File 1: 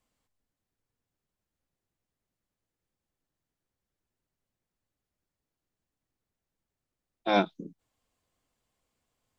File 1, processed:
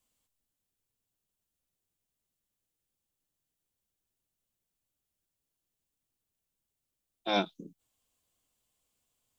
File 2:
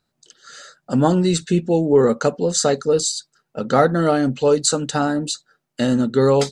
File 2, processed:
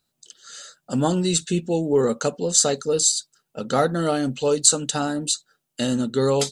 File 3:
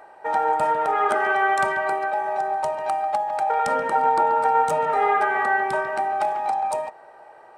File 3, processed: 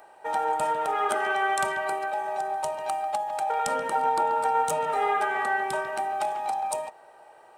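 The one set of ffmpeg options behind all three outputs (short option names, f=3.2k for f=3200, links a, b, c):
-af "aexciter=amount=3.1:drive=1.3:freq=2.7k,volume=-5dB"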